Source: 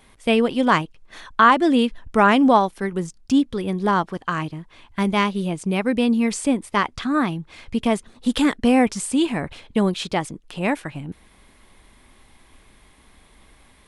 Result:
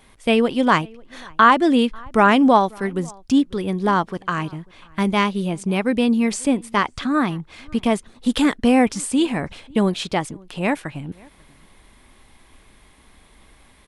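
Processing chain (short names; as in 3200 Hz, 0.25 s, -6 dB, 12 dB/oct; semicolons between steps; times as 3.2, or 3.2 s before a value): outdoor echo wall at 93 m, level -26 dB; gain +1 dB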